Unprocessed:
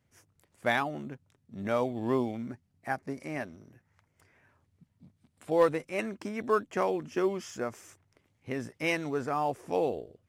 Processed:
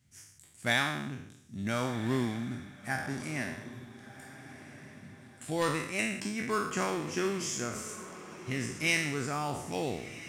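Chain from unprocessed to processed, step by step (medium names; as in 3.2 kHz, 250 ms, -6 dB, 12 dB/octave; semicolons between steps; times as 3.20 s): spectral sustain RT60 0.76 s; ten-band graphic EQ 125 Hz +4 dB, 500 Hz -10 dB, 1 kHz -6 dB, 4 kHz +3 dB, 8 kHz +9 dB; echo that smears into a reverb 1393 ms, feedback 40%, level -14 dB; trim +1 dB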